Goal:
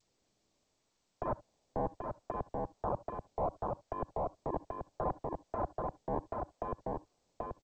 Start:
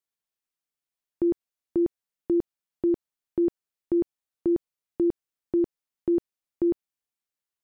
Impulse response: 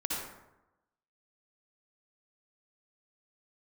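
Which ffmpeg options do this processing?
-filter_complex "[0:a]equalizer=frequency=92:width_type=o:width=0.56:gain=-7,acrossover=split=130|340[link_01][link_02][link_03];[link_03]asoftclip=type=tanh:threshold=-33.5dB[link_04];[link_01][link_02][link_04]amix=inputs=3:normalize=0,acrusher=samples=19:mix=1:aa=0.000001:lfo=1:lforange=30.4:lforate=0.7,aeval=exprs='(mod(26.6*val(0)+1,2)-1)/26.6':channel_layout=same,asplit=2[link_05][link_06];[1:a]atrim=start_sample=2205,atrim=end_sample=3528[link_07];[link_06][link_07]afir=irnorm=-1:irlink=0,volume=-22.5dB[link_08];[link_05][link_08]amix=inputs=2:normalize=0,acrossover=split=150|630[link_09][link_10][link_11];[link_09]acompressor=threshold=-44dB:ratio=4[link_12];[link_10]acompressor=threshold=-50dB:ratio=4[link_13];[link_11]acompressor=threshold=-38dB:ratio=4[link_14];[link_12][link_13][link_14]amix=inputs=3:normalize=0,adynamicequalizer=threshold=0.00126:dfrequency=660:dqfactor=0.93:tfrequency=660:tqfactor=0.93:attack=5:release=100:ratio=0.375:range=4:mode=boostabove:tftype=bell,lowpass=frequency=1000:width=0.5412,lowpass=frequency=1000:width=1.3066,aecho=1:1:783:0.422,alimiter=level_in=10.5dB:limit=-24dB:level=0:latency=1:release=169,volume=-10.5dB,volume=9.5dB" -ar 16000 -c:a g722

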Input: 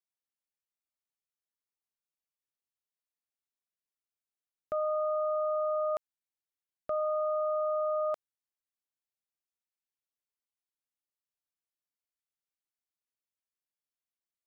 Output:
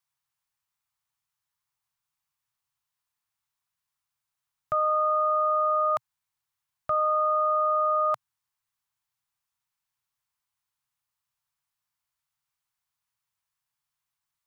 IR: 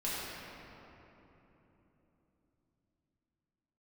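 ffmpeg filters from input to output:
-af "equalizer=frequency=125:width_type=o:width=1:gain=11,equalizer=frequency=250:width_type=o:width=1:gain=-11,equalizer=frequency=500:width_type=o:width=1:gain=-12,equalizer=frequency=1000:width_type=o:width=1:gain=9,volume=8dB"

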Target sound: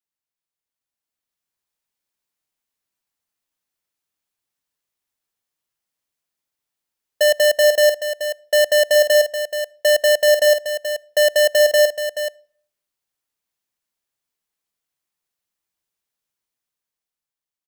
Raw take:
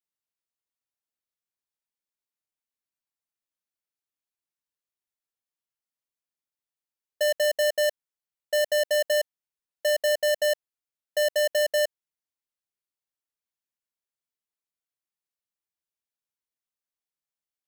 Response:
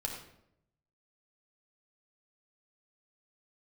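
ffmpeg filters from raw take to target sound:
-filter_complex "[0:a]dynaudnorm=framelen=340:gausssize=7:maxgain=8.5dB,aecho=1:1:429:0.355,asplit=2[link_01][link_02];[1:a]atrim=start_sample=2205,asetrate=61740,aresample=44100[link_03];[link_02][link_03]afir=irnorm=-1:irlink=0,volume=-20dB[link_04];[link_01][link_04]amix=inputs=2:normalize=0"

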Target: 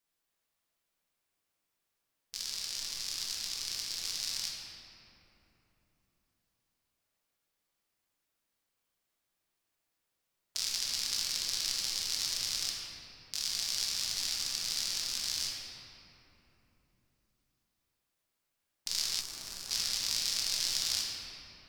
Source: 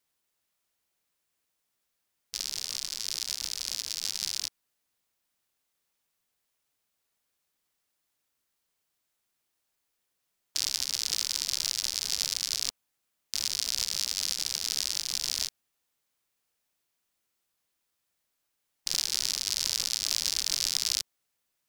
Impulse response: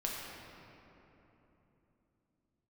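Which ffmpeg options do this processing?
-filter_complex "[1:a]atrim=start_sample=2205[link_01];[0:a][link_01]afir=irnorm=-1:irlink=0,asettb=1/sr,asplit=3[link_02][link_03][link_04];[link_02]atrim=end=19.204[link_05];[link_03]atrim=start=19.2:end=19.71,asetpts=PTS-STARTPTS,afade=type=in:duration=0.004:curve=qsin,afade=type=out:start_time=0.506:duration=0.004:curve=qsin,acrossover=split=1600|6800[link_06][link_07][link_08];[link_06]acompressor=threshold=-45dB:ratio=4[link_09];[link_07]acompressor=threshold=-42dB:ratio=4[link_10];[link_08]acompressor=threshold=-40dB:ratio=4[link_11];[link_09][link_10][link_11]amix=inputs=3:normalize=0[link_12];[link_04]atrim=start=19.706[link_13];[link_05][link_12]acrossfade=duration=0.004:curve1=hsin:curve2=qsin[link_14];[link_14][link_13]acrossfade=duration=0.004:curve1=qsin:curve2=hsin,volume=-4.5dB"

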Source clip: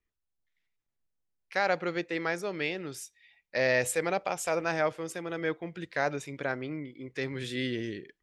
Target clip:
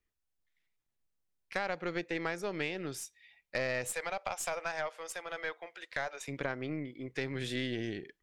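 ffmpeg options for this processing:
ffmpeg -i in.wav -filter_complex "[0:a]asettb=1/sr,asplit=3[link_01][link_02][link_03];[link_01]atrim=end=3.934[link_04];[link_02]atrim=start=3.93:end=6.28,asetpts=PTS-STARTPTS,afade=type=in:duration=0.004:curve=qsin,afade=type=out:start_time=2.346:duration=0.004:curve=qsin,highpass=frequency=580:width=0.5412,highpass=frequency=580:width=1.3066[link_05];[link_03]atrim=start=6.276[link_06];[link_04][link_05]acrossfade=duration=0.004:curve1=hsin:curve2=qsin[link_07];[link_07][link_06]acrossfade=duration=0.004:curve1=qsin:curve2=hsin,acompressor=threshold=-32dB:ratio=5,aeval=exprs='0.112*(cos(1*acos(clip(val(0)/0.112,-1,1)))-cos(1*PI/2))+0.0112*(cos(4*acos(clip(val(0)/0.112,-1,1)))-cos(4*PI/2))':channel_layout=same" out.wav

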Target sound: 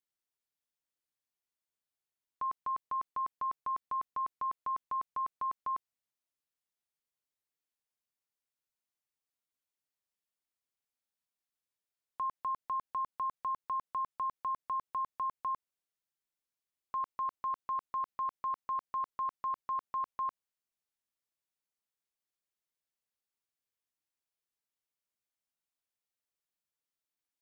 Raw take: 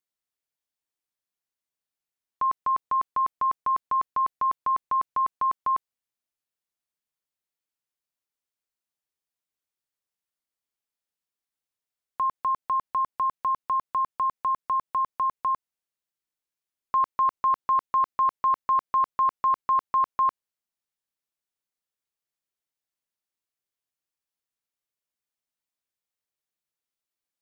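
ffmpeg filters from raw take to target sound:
ffmpeg -i in.wav -af "alimiter=level_in=2dB:limit=-24dB:level=0:latency=1,volume=-2dB,volume=-4dB" out.wav

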